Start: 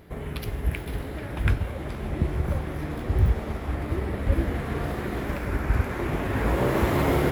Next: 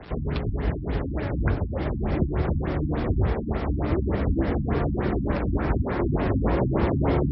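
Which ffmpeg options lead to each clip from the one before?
ffmpeg -i in.wav -filter_complex "[0:a]acrusher=bits=7:mix=0:aa=0.000001,acrossover=split=120|270|1200|3800[link_01][link_02][link_03][link_04][link_05];[link_01]acompressor=threshold=-33dB:ratio=4[link_06];[link_02]acompressor=threshold=-34dB:ratio=4[link_07];[link_03]acompressor=threshold=-32dB:ratio=4[link_08];[link_04]acompressor=threshold=-47dB:ratio=4[link_09];[link_05]acompressor=threshold=-50dB:ratio=4[link_10];[link_06][link_07][link_08][link_09][link_10]amix=inputs=5:normalize=0,afftfilt=real='re*lt(b*sr/1024,290*pow(5700/290,0.5+0.5*sin(2*PI*3.4*pts/sr)))':imag='im*lt(b*sr/1024,290*pow(5700/290,0.5+0.5*sin(2*PI*3.4*pts/sr)))':win_size=1024:overlap=0.75,volume=7dB" out.wav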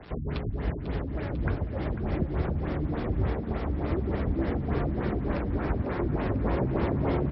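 ffmpeg -i in.wav -af "aecho=1:1:496|992|1488|1984|2480|2976|3472:0.266|0.16|0.0958|0.0575|0.0345|0.0207|0.0124,volume=-4.5dB" out.wav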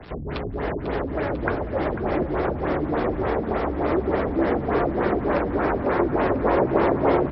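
ffmpeg -i in.wav -filter_complex "[0:a]acrossover=split=320|1900[link_01][link_02][link_03];[link_01]asoftclip=type=tanh:threshold=-35dB[link_04];[link_02]dynaudnorm=framelen=280:gausssize=3:maxgain=7.5dB[link_05];[link_04][link_05][link_03]amix=inputs=3:normalize=0,volume=5dB" out.wav

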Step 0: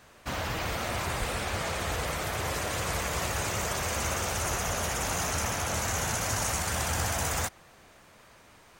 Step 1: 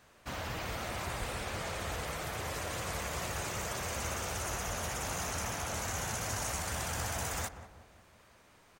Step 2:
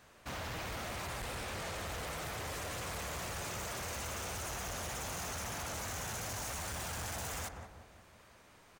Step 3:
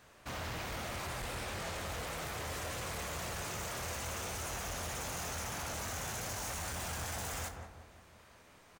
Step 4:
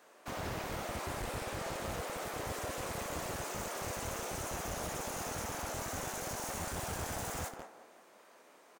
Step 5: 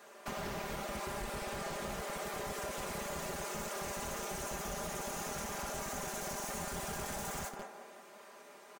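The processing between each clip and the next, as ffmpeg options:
ffmpeg -i in.wav -filter_complex "[0:a]asplit=2[link_01][link_02];[link_02]adelay=184,lowpass=frequency=1100:poles=1,volume=-10dB,asplit=2[link_03][link_04];[link_04]adelay=184,lowpass=frequency=1100:poles=1,volume=0.5,asplit=2[link_05][link_06];[link_06]adelay=184,lowpass=frequency=1100:poles=1,volume=0.5,asplit=2[link_07][link_08];[link_08]adelay=184,lowpass=frequency=1100:poles=1,volume=0.5,asplit=2[link_09][link_10];[link_10]adelay=184,lowpass=frequency=1100:poles=1,volume=0.5[link_11];[link_01][link_03][link_05][link_07][link_09][link_11]amix=inputs=6:normalize=0,volume=-6.5dB" out.wav
ffmpeg -i in.wav -af "asoftclip=type=hard:threshold=-39.5dB,volume=1dB" out.wav
ffmpeg -i in.wav -af "aecho=1:1:24|73:0.335|0.141" out.wav
ffmpeg -i in.wav -filter_complex "[0:a]acrossover=split=270|5300[link_01][link_02][link_03];[link_01]acrusher=bits=6:mix=0:aa=0.000001[link_04];[link_02]tiltshelf=frequency=1300:gain=5[link_05];[link_04][link_05][link_03]amix=inputs=3:normalize=0" out.wav
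ffmpeg -i in.wav -af "aecho=1:1:5:0.73,acompressor=threshold=-43dB:ratio=2.5,volume=3.5dB" out.wav

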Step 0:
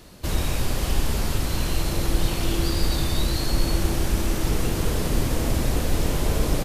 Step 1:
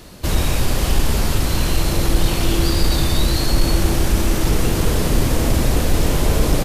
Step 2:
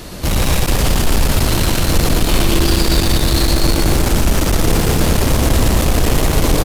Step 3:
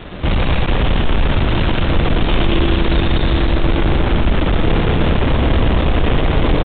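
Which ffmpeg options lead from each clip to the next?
ffmpeg -i in.wav -af "acontrast=68" out.wav
ffmpeg -i in.wav -filter_complex "[0:a]asoftclip=type=tanh:threshold=-21.5dB,asplit=2[link_01][link_02];[link_02]aecho=0:1:116.6|215.7:0.631|0.501[link_03];[link_01][link_03]amix=inputs=2:normalize=0,volume=9dB" out.wav
ffmpeg -i in.wav -af "aeval=exprs='0.531*(cos(1*acos(clip(val(0)/0.531,-1,1)))-cos(1*PI/2))+0.0596*(cos(5*acos(clip(val(0)/0.531,-1,1)))-cos(5*PI/2))':channel_layout=same,aresample=8000,aeval=exprs='sgn(val(0))*max(abs(val(0))-0.0188,0)':channel_layout=same,aresample=44100" out.wav

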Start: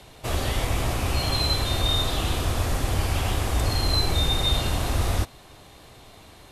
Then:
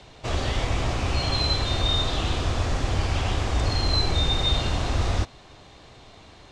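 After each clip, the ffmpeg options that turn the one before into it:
ffmpeg -i in.wav -af "lowpass=frequency=6900:width=0.5412,lowpass=frequency=6900:width=1.3066" out.wav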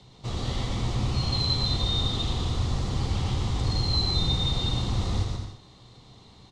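ffmpeg -i in.wav -filter_complex "[0:a]equalizer=frequency=125:width_type=o:width=0.33:gain=10,equalizer=frequency=200:width_type=o:width=0.33:gain=9,equalizer=frequency=630:width_type=o:width=0.33:gain=-8,equalizer=frequency=1600:width_type=o:width=0.33:gain=-10,equalizer=frequency=2500:width_type=o:width=0.33:gain=-7,equalizer=frequency=4000:width_type=o:width=0.33:gain=5,asplit=2[link_01][link_02];[link_02]aecho=0:1:120|204|262.8|304|332.8:0.631|0.398|0.251|0.158|0.1[link_03];[link_01][link_03]amix=inputs=2:normalize=0,volume=-6.5dB" out.wav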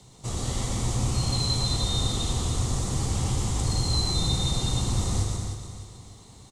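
ffmpeg -i in.wav -af "highshelf=frequency=5800:width_type=q:width=1.5:gain=14,aecho=1:1:304|608|912|1216|1520:0.299|0.128|0.0552|0.0237|0.0102" out.wav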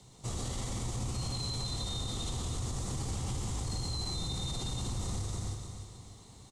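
ffmpeg -i in.wav -af "alimiter=limit=-23dB:level=0:latency=1:release=38,volume=-4.5dB" out.wav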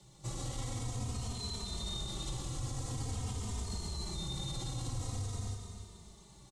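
ffmpeg -i in.wav -filter_complex "[0:a]asplit=2[link_01][link_02];[link_02]adelay=3,afreqshift=-0.47[link_03];[link_01][link_03]amix=inputs=2:normalize=1" out.wav

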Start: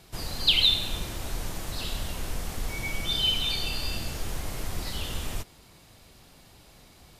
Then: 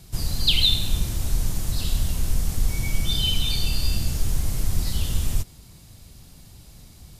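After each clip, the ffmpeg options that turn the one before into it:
ffmpeg -i in.wav -af "bass=frequency=250:gain=14,treble=frequency=4000:gain=10,volume=-3dB" out.wav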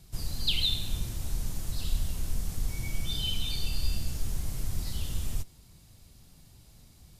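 ffmpeg -i in.wav -af "flanger=delay=0.2:depth=9.3:regen=87:speed=0.52:shape=triangular,volume=-4dB" out.wav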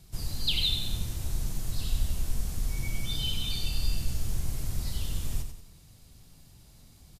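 ffmpeg -i in.wav -af "aecho=1:1:92|184|276|368|460:0.398|0.163|0.0669|0.0274|0.0112" out.wav

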